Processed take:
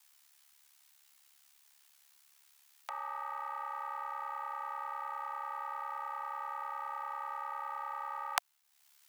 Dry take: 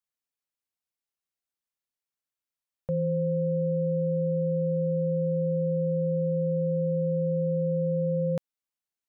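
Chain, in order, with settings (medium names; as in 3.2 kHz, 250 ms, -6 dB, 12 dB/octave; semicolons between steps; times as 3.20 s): in parallel at -12 dB: saturation -30.5 dBFS, distortion -10 dB; on the sum: formant shift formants -5 st; ring modulator 35 Hz; steep high-pass 710 Hz 72 dB/octave; tape noise reduction on one side only encoder only; trim +18 dB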